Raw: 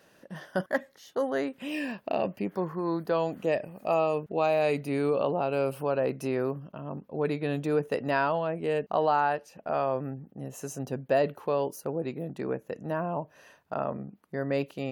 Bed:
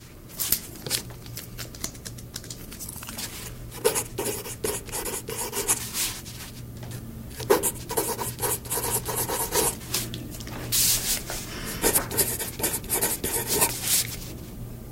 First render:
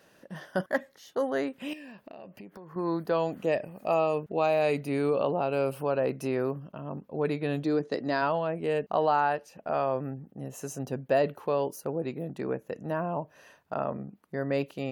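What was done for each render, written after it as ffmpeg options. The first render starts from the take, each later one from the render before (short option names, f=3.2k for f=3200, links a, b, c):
-filter_complex "[0:a]asettb=1/sr,asplit=3[a][b][c];[a]atrim=end=1.734[d];[b]atrim=start=1.73:end=2.76,asetpts=PTS-STARTPTS,afade=t=in:d=0.004:c=qsin,afade=t=out:st=1.026:d=0.004:c=qsin,acompressor=threshold=-43dB:ratio=6:attack=3.2:release=140:knee=1:detection=peak[e];[c]atrim=start=2.756[f];[d][e]acrossfade=d=0.004:c1=hsin:c2=qsin[g];[g][f]acrossfade=d=0.004:c1=qsin:c2=hsin,asplit=3[h][i][j];[h]afade=t=out:st=7.63:d=0.02[k];[i]highpass=150,equalizer=f=320:t=q:w=4:g=5,equalizer=f=490:t=q:w=4:g=-4,equalizer=f=900:t=q:w=4:g=-5,equalizer=f=1.4k:t=q:w=4:g=-4,equalizer=f=2.7k:t=q:w=4:g=-9,equalizer=f=4.3k:t=q:w=4:g=10,lowpass=f=7k:w=0.5412,lowpass=f=7k:w=1.3066,afade=t=in:st=7.63:d=0.02,afade=t=out:st=8.21:d=0.02[l];[j]afade=t=in:st=8.21:d=0.02[m];[k][l][m]amix=inputs=3:normalize=0"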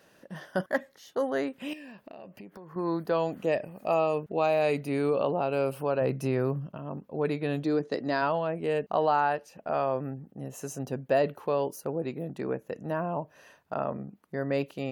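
-filter_complex "[0:a]asettb=1/sr,asplit=3[a][b][c];[a]atrim=end=6.014[d];[b]atrim=start=6.01:end=6.77,asetpts=PTS-STARTPTS,afade=t=in:d=0.004:c=qsin,afade=t=out:st=0.756:d=0.004:c=qsin,equalizer=f=130:w=1.5:g=7.5[e];[c]atrim=start=6.766[f];[d][e]acrossfade=d=0.004:c1=hsin:c2=qsin[g];[g][f]acrossfade=d=0.004:c1=qsin:c2=hsin"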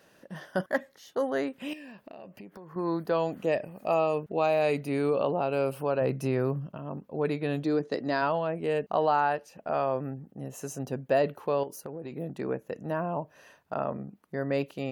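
-filter_complex "[0:a]asettb=1/sr,asplit=3[a][b][c];[a]atrim=end=11.634[d];[b]atrim=start=11.63:end=12.12,asetpts=PTS-STARTPTS,afade=t=in:d=0.004:c=qsin,afade=t=out:st=0.486:d=0.004:c=qsin,acompressor=threshold=-34dB:ratio=6:attack=3.2:release=140:knee=1:detection=peak[e];[c]atrim=start=12.116[f];[d][e]acrossfade=d=0.004:c1=hsin:c2=qsin[g];[g][f]acrossfade=d=0.004:c1=qsin:c2=hsin"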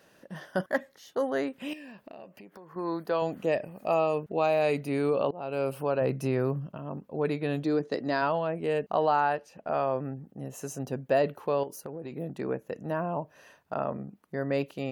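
-filter_complex "[0:a]asettb=1/sr,asplit=3[a][b][c];[a]atrim=end=2.244[d];[b]atrim=start=2.24:end=3.22,asetpts=PTS-STARTPTS,afade=t=in:d=0.004:c=qsin,afade=t=out:st=0.976:d=0.004:c=qsin,lowshelf=f=200:g=-10[e];[c]atrim=start=3.216[f];[d][e]acrossfade=d=0.004:c1=hsin:c2=qsin[g];[g][f]acrossfade=d=0.004:c1=qsin:c2=hsin,asettb=1/sr,asplit=3[h][i][j];[h]atrim=end=9.354[k];[i]atrim=start=9.35:end=10.17,asetpts=PTS-STARTPTS,afade=t=in:d=0.004:c=qsin,afade=t=out:st=0.816:d=0.004:c=qsin,highshelf=f=8.6k:g=-8.5[l];[j]atrim=start=10.166[m];[k][l]acrossfade=d=0.004:c1=hsin:c2=qsin[n];[n][m]acrossfade=d=0.004:c1=qsin:c2=hsin,asplit=2[o][p];[o]atrim=end=5.31,asetpts=PTS-STARTPTS,afade=t=out:st=5.306:d=0.004:c=hsin:silence=0.0749894[q];[p]atrim=start=5.31,asetpts=PTS-STARTPTS,afade=t=in:d=0.52:c=qsin:silence=0.0749894[r];[q][r]concat=n=2:v=0:a=1"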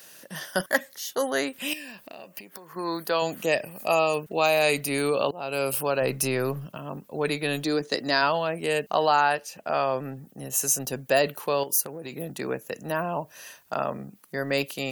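-filter_complex "[0:a]acrossover=split=160[a][b];[a]aeval=exprs='clip(val(0),-1,0.00708)':c=same[c];[c][b]amix=inputs=2:normalize=0,crystalizer=i=9:c=0"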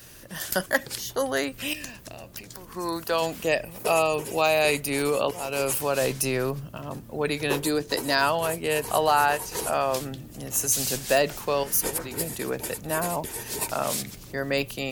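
-filter_complex "[1:a]volume=-8dB[a];[0:a][a]amix=inputs=2:normalize=0"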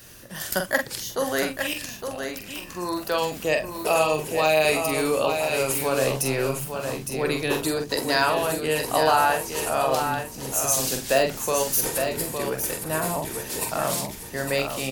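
-filter_complex "[0:a]asplit=2[a][b];[b]adelay=45,volume=-6dB[c];[a][c]amix=inputs=2:normalize=0,aecho=1:1:861:0.473"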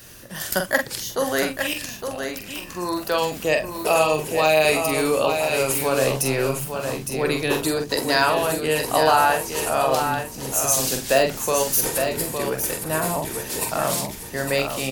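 -af "volume=2.5dB"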